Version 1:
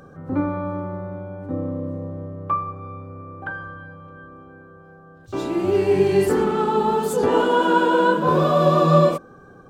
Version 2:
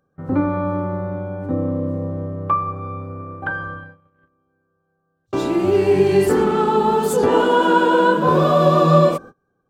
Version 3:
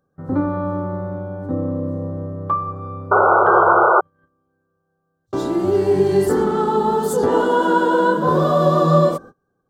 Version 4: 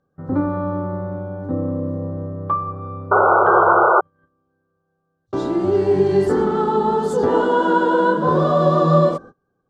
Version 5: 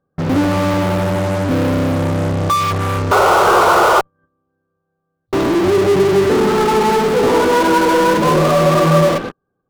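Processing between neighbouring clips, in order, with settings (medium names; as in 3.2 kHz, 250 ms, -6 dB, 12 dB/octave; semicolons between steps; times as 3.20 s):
gate -37 dBFS, range -30 dB; in parallel at 0 dB: compression, threshold -24 dBFS, peak gain reduction 13.5 dB
peaking EQ 2.5 kHz -14.5 dB 0.43 oct; painted sound noise, 3.11–4.01 s, 340–1500 Hz -12 dBFS; trim -1 dB
distance through air 84 m
boxcar filter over 7 samples; in parallel at -4 dB: fuzz box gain 42 dB, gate -47 dBFS; on the sum: trim -1 dB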